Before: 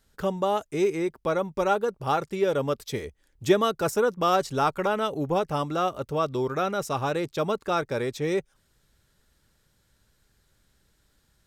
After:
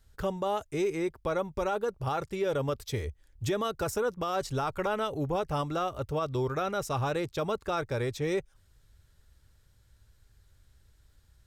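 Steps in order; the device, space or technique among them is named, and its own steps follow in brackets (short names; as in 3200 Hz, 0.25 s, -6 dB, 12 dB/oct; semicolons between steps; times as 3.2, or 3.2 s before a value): car stereo with a boomy subwoofer (resonant low shelf 130 Hz +9.5 dB, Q 1.5; limiter -18.5 dBFS, peak gain reduction 9.5 dB); gain -2.5 dB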